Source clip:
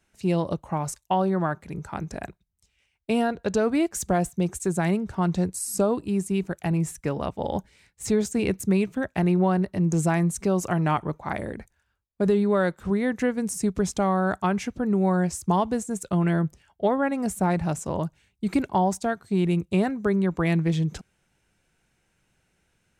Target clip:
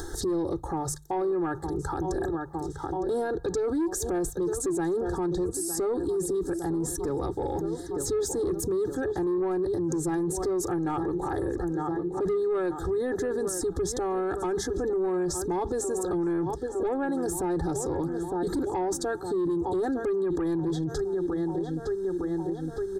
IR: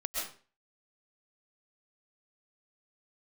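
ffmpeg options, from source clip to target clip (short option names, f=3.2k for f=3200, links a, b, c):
-filter_complex "[0:a]equalizer=f=340:t=o:w=0.59:g=11,aecho=1:1:2.4:0.97,asplit=2[a][b];[b]adelay=909,lowpass=f=3.5k:p=1,volume=-17dB,asplit=2[c][d];[d]adelay=909,lowpass=f=3.5k:p=1,volume=0.5,asplit=2[e][f];[f]adelay=909,lowpass=f=3.5k:p=1,volume=0.5,asplit=2[g][h];[h]adelay=909,lowpass=f=3.5k:p=1,volume=0.5[i];[a][c][e][g][i]amix=inputs=5:normalize=0,acompressor=mode=upward:threshold=-26dB:ratio=2.5,asuperstop=centerf=2500:order=8:qfactor=1.5,acontrast=88,lowshelf=f=66:g=10,alimiter=limit=-19.5dB:level=0:latency=1:release=24,bandreject=f=50:t=h:w=6,bandreject=f=100:t=h:w=6,bandreject=f=150:t=h:w=6,bandreject=f=200:t=h:w=6,volume=-3dB"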